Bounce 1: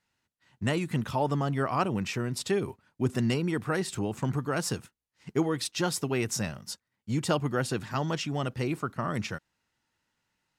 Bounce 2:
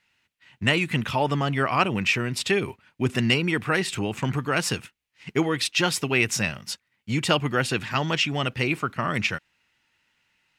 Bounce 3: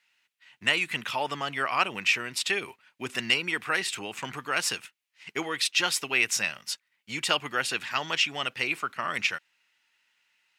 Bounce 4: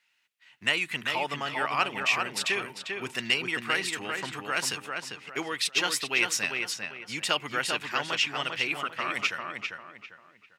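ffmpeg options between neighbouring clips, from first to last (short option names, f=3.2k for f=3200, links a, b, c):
-af "equalizer=f=2.5k:t=o:w=1.2:g=12.5,volume=3dB"
-af "highpass=f=1.2k:p=1"
-filter_complex "[0:a]asplit=2[a][b];[b]adelay=397,lowpass=f=2.9k:p=1,volume=-4dB,asplit=2[c][d];[d]adelay=397,lowpass=f=2.9k:p=1,volume=0.34,asplit=2[e][f];[f]adelay=397,lowpass=f=2.9k:p=1,volume=0.34,asplit=2[g][h];[h]adelay=397,lowpass=f=2.9k:p=1,volume=0.34[i];[a][c][e][g][i]amix=inputs=5:normalize=0,volume=-1.5dB"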